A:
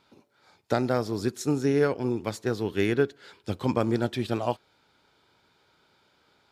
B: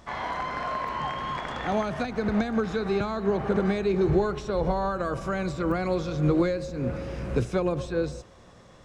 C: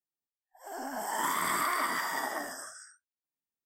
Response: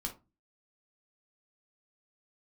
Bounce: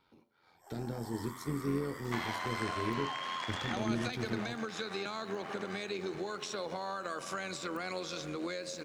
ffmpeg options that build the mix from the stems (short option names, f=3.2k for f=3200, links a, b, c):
-filter_complex "[0:a]equalizer=f=7.3k:w=1.3:g=-9.5,alimiter=limit=-16.5dB:level=0:latency=1,acrossover=split=380|3000[a][b][c];[b]acompressor=threshold=-54dB:ratio=2[d];[a][d][c]amix=inputs=3:normalize=0,volume=-8dB,asplit=2[e][f];[f]volume=-3.5dB[g];[1:a]tiltshelf=f=1.5k:g=-8.5,acompressor=threshold=-36dB:ratio=4,highpass=f=190:w=0.5412,highpass=f=190:w=1.3066,adelay=2050,volume=2.5dB[h];[2:a]alimiter=level_in=3dB:limit=-24dB:level=0:latency=1:release=124,volume=-3dB,volume=-13dB,asplit=2[i][j];[j]volume=-5dB[k];[3:a]atrim=start_sample=2205[l];[g][k]amix=inputs=2:normalize=0[m];[m][l]afir=irnorm=-1:irlink=0[n];[e][h][i][n]amix=inputs=4:normalize=0,tremolo=f=87:d=0.462"